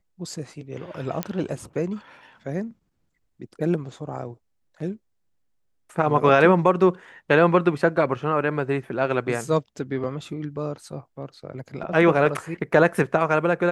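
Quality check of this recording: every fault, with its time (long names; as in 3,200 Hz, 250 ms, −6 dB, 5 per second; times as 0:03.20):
0:01.23: click −10 dBFS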